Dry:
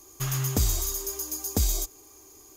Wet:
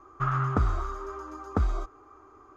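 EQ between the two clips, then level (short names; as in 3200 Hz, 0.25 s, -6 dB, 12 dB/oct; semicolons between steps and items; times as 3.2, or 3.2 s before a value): synth low-pass 1300 Hz, resonance Q 8.5; 0.0 dB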